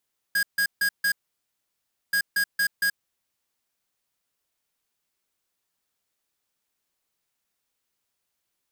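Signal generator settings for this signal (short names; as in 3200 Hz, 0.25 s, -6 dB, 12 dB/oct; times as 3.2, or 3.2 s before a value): beep pattern square 1640 Hz, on 0.08 s, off 0.15 s, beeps 4, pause 1.01 s, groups 2, -22.5 dBFS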